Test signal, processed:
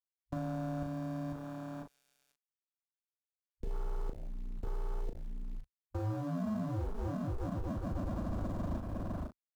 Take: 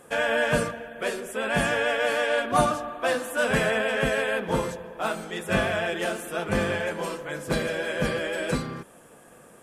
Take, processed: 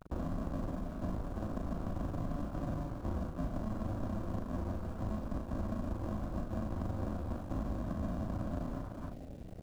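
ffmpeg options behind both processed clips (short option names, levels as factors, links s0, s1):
-filter_complex "[0:a]aexciter=amount=3.7:drive=8.6:freq=2300,highshelf=f=2700:g=-4.5,aresample=16000,acrusher=samples=37:mix=1:aa=0.000001,aresample=44100,asplit=2[s0][s1];[s1]adelay=507.3,volume=0.1,highshelf=f=4000:g=-11.4[s2];[s0][s2]amix=inputs=2:normalize=0,areverse,acompressor=threshold=0.0355:ratio=12,areverse,equalizer=f=140:t=o:w=0.24:g=-14.5,acrossover=split=160|750[s3][s4][s5];[s3]acompressor=threshold=0.01:ratio=4[s6];[s4]acompressor=threshold=0.00708:ratio=4[s7];[s5]acompressor=threshold=0.00355:ratio=4[s8];[s6][s7][s8]amix=inputs=3:normalize=0,bandreject=f=1300:w=7.3,acrusher=bits=7:mix=0:aa=0.000001,afwtdn=0.00447,asplit=2[s9][s10];[s10]adelay=38,volume=0.501[s11];[s9][s11]amix=inputs=2:normalize=0,volume=1.33"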